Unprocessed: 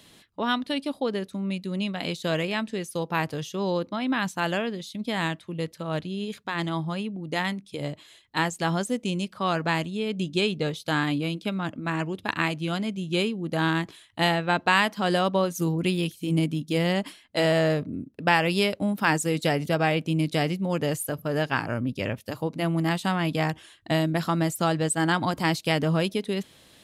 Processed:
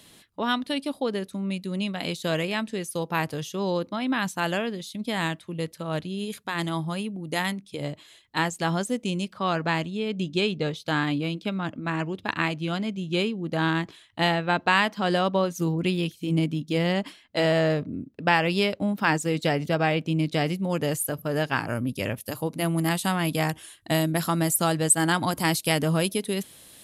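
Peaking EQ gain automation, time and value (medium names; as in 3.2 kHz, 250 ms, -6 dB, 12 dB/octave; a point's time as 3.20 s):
peaking EQ 11 kHz 0.96 oct
+5.5 dB
from 6.19 s +12 dB
from 7.52 s +1 dB
from 9.33 s -6.5 dB
from 20.46 s +5 dB
from 21.68 s +15 dB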